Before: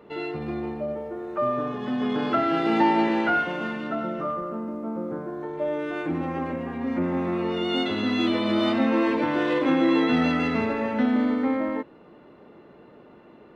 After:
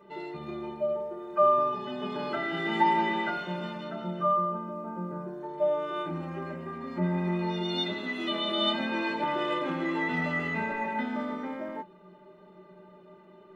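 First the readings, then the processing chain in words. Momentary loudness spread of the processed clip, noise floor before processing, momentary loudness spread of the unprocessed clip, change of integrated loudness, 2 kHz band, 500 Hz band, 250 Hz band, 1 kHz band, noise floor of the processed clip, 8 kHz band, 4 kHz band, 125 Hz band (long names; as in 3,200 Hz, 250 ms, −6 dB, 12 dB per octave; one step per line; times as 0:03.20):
13 LU, −50 dBFS, 11 LU, −4.5 dB, −3.0 dB, −4.0 dB, −9.5 dB, −1.0 dB, −54 dBFS, can't be measured, 0.0 dB, −1.5 dB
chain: stiff-string resonator 180 Hz, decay 0.22 s, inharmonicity 0.03
hum removal 52.5 Hz, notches 4
level +7.5 dB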